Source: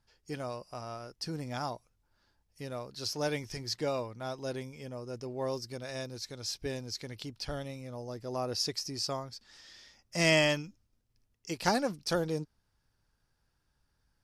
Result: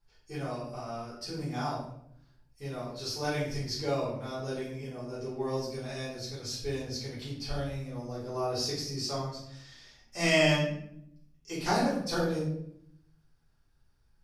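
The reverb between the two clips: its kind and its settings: simulated room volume 140 m³, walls mixed, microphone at 3.6 m; trim -10.5 dB

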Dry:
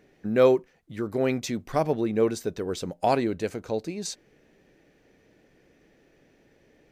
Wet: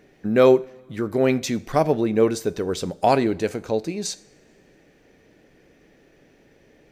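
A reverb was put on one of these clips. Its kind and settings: two-slope reverb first 0.47 s, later 2.1 s, from -18 dB, DRR 15.5 dB; trim +5 dB

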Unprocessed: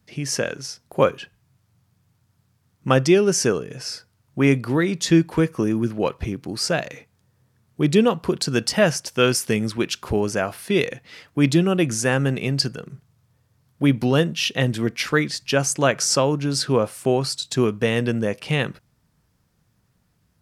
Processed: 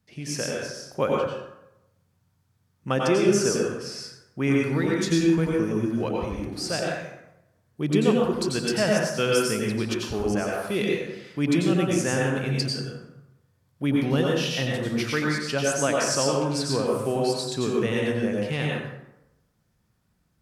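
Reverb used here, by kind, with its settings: plate-style reverb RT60 0.89 s, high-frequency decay 0.6×, pre-delay 80 ms, DRR -2.5 dB; trim -8 dB

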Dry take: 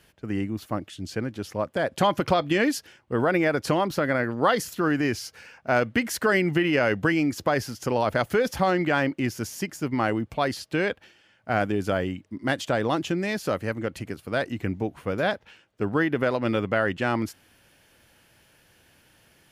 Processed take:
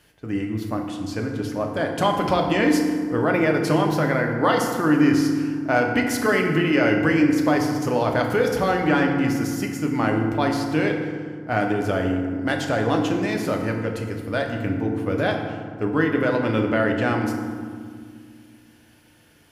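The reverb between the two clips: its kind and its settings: FDN reverb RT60 1.9 s, low-frequency decay 1.6×, high-frequency decay 0.5×, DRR 1.5 dB

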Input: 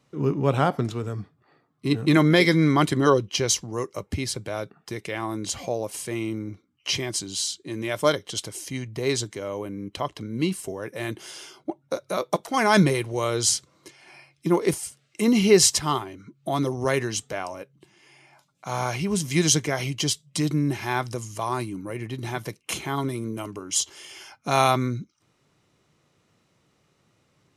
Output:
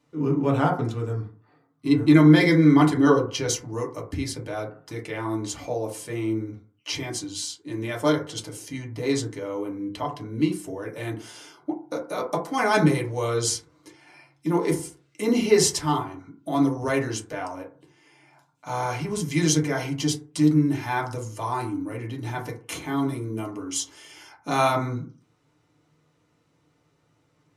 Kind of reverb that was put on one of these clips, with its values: FDN reverb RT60 0.42 s, low-frequency decay 1×, high-frequency decay 0.3×, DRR -2 dB; trim -5.5 dB

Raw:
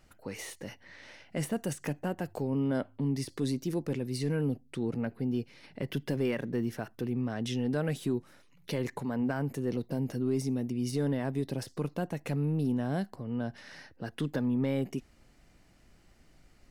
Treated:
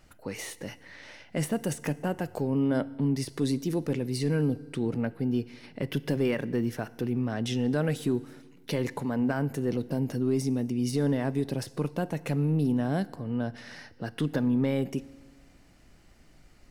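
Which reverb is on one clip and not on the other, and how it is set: FDN reverb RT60 1.5 s, low-frequency decay 1×, high-frequency decay 0.85×, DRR 17.5 dB; trim +3.5 dB

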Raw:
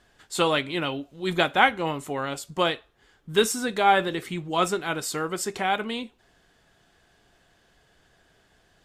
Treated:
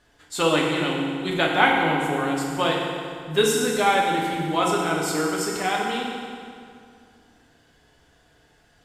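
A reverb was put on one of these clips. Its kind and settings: FDN reverb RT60 2.3 s, low-frequency decay 1.1×, high-frequency decay 0.8×, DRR -2.5 dB; trim -1.5 dB

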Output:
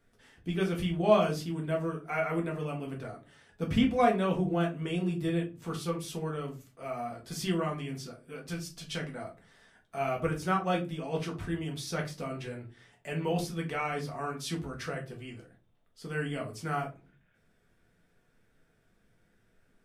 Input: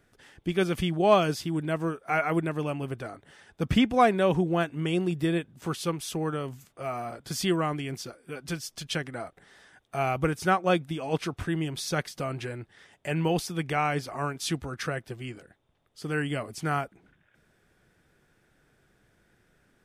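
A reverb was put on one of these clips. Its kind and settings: simulated room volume 130 m³, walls furnished, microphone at 1.6 m; trim -8.5 dB

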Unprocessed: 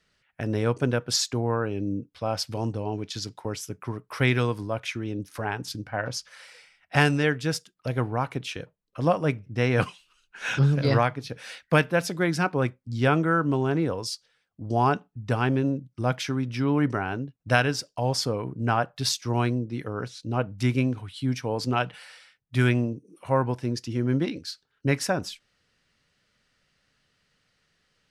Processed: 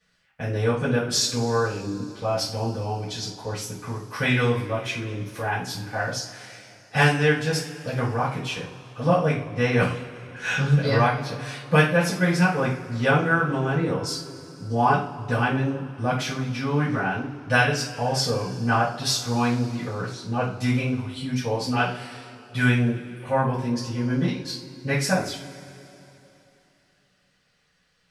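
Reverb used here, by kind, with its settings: two-slope reverb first 0.36 s, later 3.2 s, from -21 dB, DRR -9.5 dB; trim -6.5 dB

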